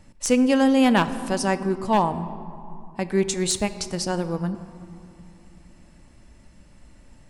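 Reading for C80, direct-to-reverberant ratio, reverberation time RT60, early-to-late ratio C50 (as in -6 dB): 14.0 dB, 11.5 dB, 2.8 s, 13.0 dB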